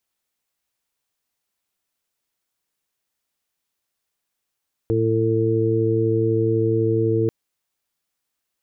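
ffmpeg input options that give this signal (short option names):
-f lavfi -i "aevalsrc='0.0841*sin(2*PI*112*t)+0.0266*sin(2*PI*224*t)+0.0841*sin(2*PI*336*t)+0.0944*sin(2*PI*448*t)':d=2.39:s=44100"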